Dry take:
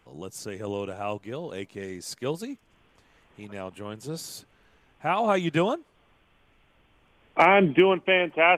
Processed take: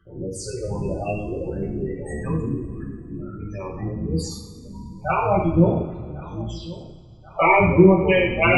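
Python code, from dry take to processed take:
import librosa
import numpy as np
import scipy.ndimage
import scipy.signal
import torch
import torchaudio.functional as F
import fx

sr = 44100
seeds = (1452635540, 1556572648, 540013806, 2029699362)

p1 = fx.octave_divider(x, sr, octaves=1, level_db=0.0)
p2 = fx.phaser_stages(p1, sr, stages=8, low_hz=190.0, high_hz=2300.0, hz=1.3, feedback_pct=5)
p3 = fx.rider(p2, sr, range_db=4, speed_s=0.5)
p4 = p2 + (p3 * librosa.db_to_amplitude(-2.0))
p5 = fx.echo_pitch(p4, sr, ms=570, semitones=-6, count=3, db_per_echo=-6.0)
p6 = p5 + fx.echo_filtered(p5, sr, ms=1088, feedback_pct=49, hz=4200.0, wet_db=-19.0, dry=0)
p7 = fx.spec_gate(p6, sr, threshold_db=-15, keep='strong')
p8 = fx.rev_double_slope(p7, sr, seeds[0], early_s=0.67, late_s=2.6, knee_db=-18, drr_db=-5.5)
y = p8 * librosa.db_to_amplitude(-4.5)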